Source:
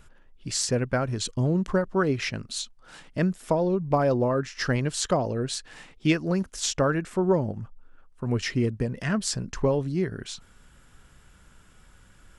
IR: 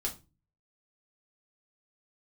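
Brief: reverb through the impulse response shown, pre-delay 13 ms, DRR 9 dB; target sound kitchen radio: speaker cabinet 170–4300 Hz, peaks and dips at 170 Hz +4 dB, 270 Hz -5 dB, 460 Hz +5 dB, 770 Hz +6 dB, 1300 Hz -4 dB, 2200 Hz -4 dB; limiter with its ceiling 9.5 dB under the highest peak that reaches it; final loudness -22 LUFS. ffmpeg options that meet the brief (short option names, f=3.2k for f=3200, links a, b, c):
-filter_complex "[0:a]alimiter=limit=-19dB:level=0:latency=1,asplit=2[a][b];[1:a]atrim=start_sample=2205,adelay=13[c];[b][c]afir=irnorm=-1:irlink=0,volume=-11dB[d];[a][d]amix=inputs=2:normalize=0,highpass=170,equalizer=f=170:t=q:w=4:g=4,equalizer=f=270:t=q:w=4:g=-5,equalizer=f=460:t=q:w=4:g=5,equalizer=f=770:t=q:w=4:g=6,equalizer=f=1.3k:t=q:w=4:g=-4,equalizer=f=2.2k:t=q:w=4:g=-4,lowpass=f=4.3k:w=0.5412,lowpass=f=4.3k:w=1.3066,volume=7dB"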